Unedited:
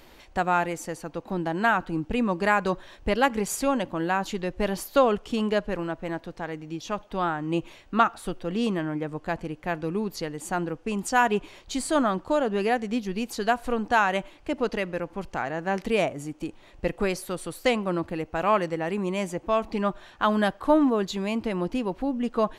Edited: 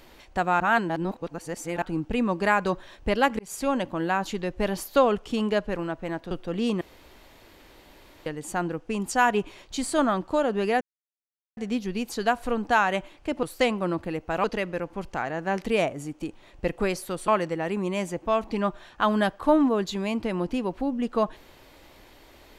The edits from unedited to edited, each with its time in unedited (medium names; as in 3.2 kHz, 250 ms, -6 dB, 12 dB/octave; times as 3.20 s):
0.60–1.82 s: reverse
3.39–3.83 s: fade in equal-power
6.31–8.28 s: delete
8.78–10.23 s: room tone
12.78 s: insert silence 0.76 s
17.48–18.49 s: move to 14.64 s